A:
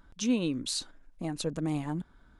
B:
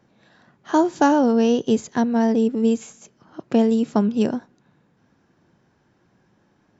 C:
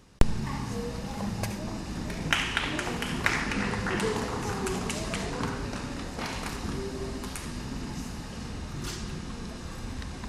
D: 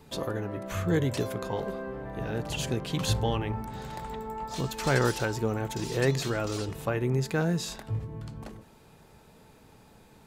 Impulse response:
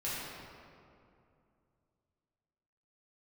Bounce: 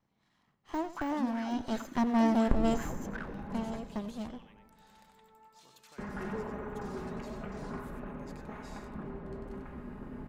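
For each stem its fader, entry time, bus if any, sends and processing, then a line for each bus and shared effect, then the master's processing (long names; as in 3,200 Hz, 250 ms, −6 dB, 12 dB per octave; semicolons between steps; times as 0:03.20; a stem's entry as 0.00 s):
+2.0 dB, 0.95 s, send −14 dB, no echo send, sign of each sample alone; LFO wah 2.8 Hz 240–1,800 Hz, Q 5.4
0:01.45 −16 dB → 0:02.15 −6.5 dB → 0:03.24 −6.5 dB → 0:03.54 −18 dB, 0.00 s, no send, echo send −15.5 dB, lower of the sound and its delayed copy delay 0.97 ms; de-essing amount 80%
−8.5 dB, 2.30 s, muted 0:03.78–0:05.98, send −8.5 dB, no echo send, lower of the sound and its delayed copy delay 4.8 ms; Bessel low-pass filter 1,300 Hz, order 4
−15.5 dB, 1.05 s, no send, echo send −5.5 dB, high-pass filter 1,300 Hz 6 dB per octave; downward compressor 3 to 1, threshold −43 dBFS, peak gain reduction 13 dB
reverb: on, RT60 2.5 s, pre-delay 3 ms
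echo: single-tap delay 95 ms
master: no processing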